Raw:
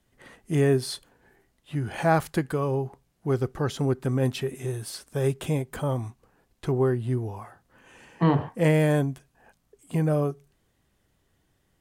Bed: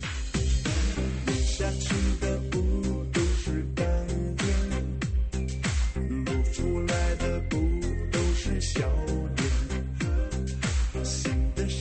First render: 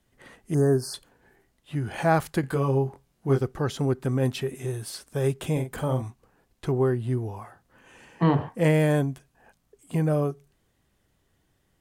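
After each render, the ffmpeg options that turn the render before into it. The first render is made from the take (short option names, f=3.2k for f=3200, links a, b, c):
-filter_complex "[0:a]asettb=1/sr,asplit=3[a][b][c];[a]atrim=end=0.544[d];[b]atrim=start=0.54:end=0.94,asetpts=PTS-STARTPTS,afade=t=in:d=0.004:c=qsin,afade=t=out:st=0.396:d=0.004:c=qsin,asuperstop=centerf=2800:order=20:qfactor=1[e];[c]atrim=start=0.936[f];[d][e]acrossfade=d=0.004:c1=hsin:c2=qsin[g];[g][f]acrossfade=d=0.004:c1=qsin:c2=hsin,asettb=1/sr,asplit=3[h][i][j];[h]atrim=end=2.414[k];[i]atrim=start=2.41:end=3.41,asetpts=PTS-STARTPTS,afade=t=in:d=0.004:c=qsin,afade=t=out:st=0.996:d=0.004:c=qsin,asplit=2[l][m];[m]adelay=22,volume=-3.5dB[n];[l][n]amix=inputs=2:normalize=0,atrim=end_sample=44100[o];[j]atrim=start=3.406[p];[k][o]acrossfade=d=0.004:c1=hsin:c2=qsin[q];[q][p]acrossfade=d=0.004:c1=qsin:c2=hsin,asettb=1/sr,asplit=3[r][s][t];[r]atrim=end=5.524[u];[s]atrim=start=5.52:end=6.02,asetpts=PTS-STARTPTS,afade=t=in:d=0.004:c=qsin,afade=t=out:st=0.496:d=0.004:c=qsin,asplit=2[v][w];[w]adelay=46,volume=-7dB[x];[v][x]amix=inputs=2:normalize=0,atrim=end_sample=22050[y];[t]atrim=start=6.016[z];[u][y]acrossfade=d=0.004:c1=hsin:c2=qsin[aa];[aa][z]acrossfade=d=0.004:c1=qsin:c2=hsin"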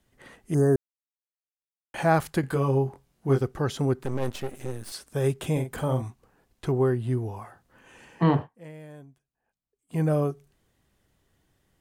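-filter_complex "[0:a]asettb=1/sr,asplit=3[a][b][c];[a]atrim=end=4.034[d];[b]atrim=start=4.03:end=4.92,asetpts=PTS-STARTPTS,afade=t=in:d=0.004:c=qsin,afade=t=out:st=0.886:d=0.004:c=qsin,aeval=exprs='max(val(0),0)':c=same[e];[c]atrim=start=4.916[f];[d][e]acrossfade=d=0.004:c1=hsin:c2=qsin[g];[g][f]acrossfade=d=0.004:c1=qsin:c2=hsin,asplit=5[h][i][j][k][l];[h]atrim=end=0.76,asetpts=PTS-STARTPTS,afade=t=out:st=0.756:d=0.004:c=hsin[m];[i]atrim=start=0.76:end=1.94,asetpts=PTS-STARTPTS,volume=0[n];[j]atrim=start=1.94:end=8.48,asetpts=PTS-STARTPTS,afade=t=in:d=0.004:c=hsin,afade=t=out:st=6.41:d=0.13:silence=0.0707946[o];[k]atrim=start=8.48:end=9.88,asetpts=PTS-STARTPTS,volume=-23dB[p];[l]atrim=start=9.88,asetpts=PTS-STARTPTS,afade=t=in:d=0.13:silence=0.0707946[q];[m][n][o][p][q]concat=n=5:v=0:a=1"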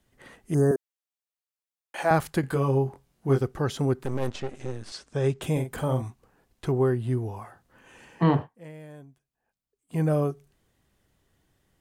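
-filter_complex "[0:a]asettb=1/sr,asplit=3[a][b][c];[a]atrim=end=0.714[d];[b]atrim=start=0.71:end=2.11,asetpts=PTS-STARTPTS,afade=t=in:d=0.004:c=qsin,afade=t=out:st=1.396:d=0.004:c=qsin,highpass=390[e];[c]atrim=start=2.106[f];[d][e]acrossfade=d=0.004:c1=hsin:c2=qsin[g];[g][f]acrossfade=d=0.004:c1=qsin:c2=hsin,asettb=1/sr,asplit=3[h][i][j];[h]atrim=end=4.274[k];[i]atrim=start=4.27:end=5.42,asetpts=PTS-STARTPTS,afade=t=in:d=0.004:c=qsin,afade=t=out:st=1.146:d=0.004:c=qsin,lowpass=f=7.3k:w=0.5412,lowpass=f=7.3k:w=1.3066[l];[j]atrim=start=5.416[m];[k][l]acrossfade=d=0.004:c1=hsin:c2=qsin[n];[n][m]acrossfade=d=0.004:c1=qsin:c2=hsin"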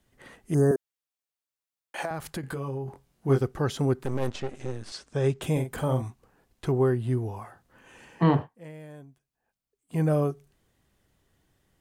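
-filter_complex "[0:a]asettb=1/sr,asplit=3[a][b][c];[a]atrim=end=2.054[d];[b]atrim=start=2.05:end=2.88,asetpts=PTS-STARTPTS,afade=t=in:d=0.004:c=qsin,afade=t=out:st=0.826:d=0.004:c=qsin,acompressor=threshold=-31dB:ratio=4:attack=3.2:release=140:knee=1:detection=peak[e];[c]atrim=start=2.876[f];[d][e]acrossfade=d=0.004:c1=hsin:c2=qsin[g];[g][f]acrossfade=d=0.004:c1=qsin:c2=hsin"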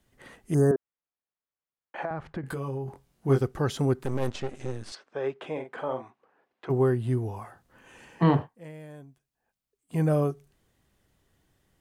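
-filter_complex "[0:a]asettb=1/sr,asplit=3[a][b][c];[a]atrim=end=0.714[d];[b]atrim=start=0.71:end=2.46,asetpts=PTS-STARTPTS,afade=t=in:d=0.004:c=qsin,afade=t=out:st=1.746:d=0.004:c=qsin,lowpass=1.8k[e];[c]atrim=start=2.456[f];[d][e]acrossfade=d=0.004:c1=hsin:c2=qsin[g];[g][f]acrossfade=d=0.004:c1=qsin:c2=hsin,asplit=3[h][i][j];[h]afade=t=out:st=4.94:d=0.02[k];[i]highpass=430,lowpass=2.3k,afade=t=in:st=4.94:d=0.02,afade=t=out:st=6.69:d=0.02[l];[j]afade=t=in:st=6.69:d=0.02[m];[k][l][m]amix=inputs=3:normalize=0"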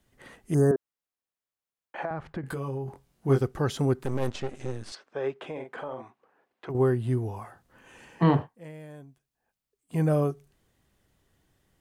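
-filter_complex "[0:a]asettb=1/sr,asplit=3[a][b][c];[a]atrim=end=5.334[d];[b]atrim=start=5.33:end=6.75,asetpts=PTS-STARTPTS,afade=t=in:d=0.004:c=qsin,afade=t=out:st=1.416:d=0.004:c=qsin,acompressor=threshold=-31dB:ratio=6:attack=3.2:release=140:knee=1:detection=peak[e];[c]atrim=start=6.746[f];[d][e]acrossfade=d=0.004:c1=hsin:c2=qsin[g];[g][f]acrossfade=d=0.004:c1=qsin:c2=hsin"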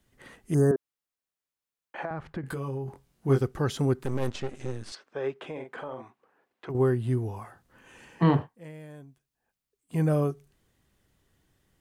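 -af "equalizer=f=690:w=1.5:g=-2.5"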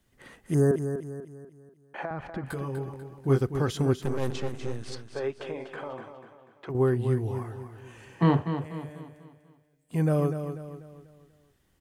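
-af "aecho=1:1:245|490|735|980|1225:0.355|0.149|0.0626|0.0263|0.011"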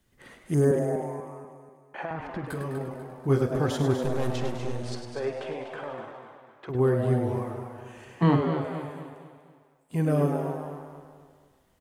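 -filter_complex "[0:a]asplit=2[a][b];[b]adelay=48,volume=-14dB[c];[a][c]amix=inputs=2:normalize=0,asplit=2[d][e];[e]asplit=7[f][g][h][i][j][k][l];[f]adelay=102,afreqshift=120,volume=-8dB[m];[g]adelay=204,afreqshift=240,volume=-12.9dB[n];[h]adelay=306,afreqshift=360,volume=-17.8dB[o];[i]adelay=408,afreqshift=480,volume=-22.6dB[p];[j]adelay=510,afreqshift=600,volume=-27.5dB[q];[k]adelay=612,afreqshift=720,volume=-32.4dB[r];[l]adelay=714,afreqshift=840,volume=-37.3dB[s];[m][n][o][p][q][r][s]amix=inputs=7:normalize=0[t];[d][t]amix=inputs=2:normalize=0"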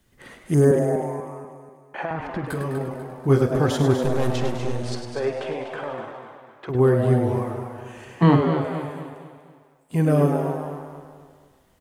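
-af "volume=5.5dB"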